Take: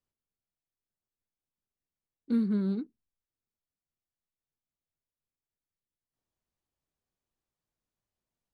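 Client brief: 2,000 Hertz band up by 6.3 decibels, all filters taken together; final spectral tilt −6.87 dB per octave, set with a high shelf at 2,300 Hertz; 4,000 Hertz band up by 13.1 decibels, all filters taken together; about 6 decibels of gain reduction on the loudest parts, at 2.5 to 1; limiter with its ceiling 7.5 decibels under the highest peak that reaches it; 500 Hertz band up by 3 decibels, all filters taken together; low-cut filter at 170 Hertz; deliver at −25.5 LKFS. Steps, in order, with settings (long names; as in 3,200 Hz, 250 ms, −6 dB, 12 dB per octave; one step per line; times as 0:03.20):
high-pass filter 170 Hz
parametric band 500 Hz +3.5 dB
parametric band 2,000 Hz +3 dB
high-shelf EQ 2,300 Hz +8.5 dB
parametric band 4,000 Hz +6.5 dB
downward compressor 2.5 to 1, threshold −32 dBFS
level +13.5 dB
brickwall limiter −17 dBFS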